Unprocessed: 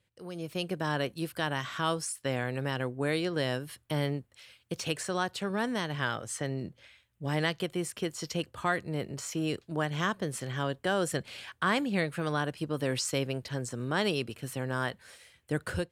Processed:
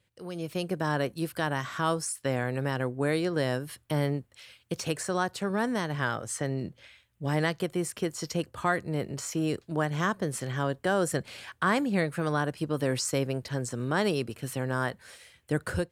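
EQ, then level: dynamic bell 3.1 kHz, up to -7 dB, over -49 dBFS, Q 1.4; +3.0 dB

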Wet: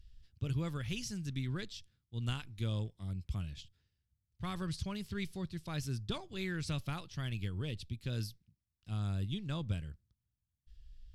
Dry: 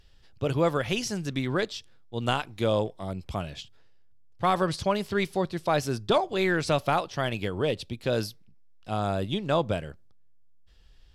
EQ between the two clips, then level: amplifier tone stack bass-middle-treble 6-0-2; bass shelf 140 Hz +9.5 dB; +5.5 dB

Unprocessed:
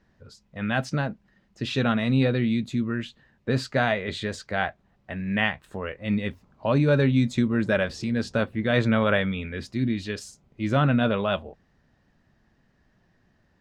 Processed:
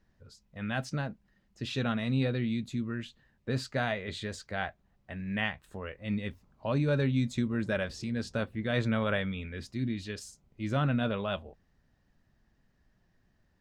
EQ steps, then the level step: bass shelf 69 Hz +10 dB; treble shelf 5 kHz +6.5 dB; -8.5 dB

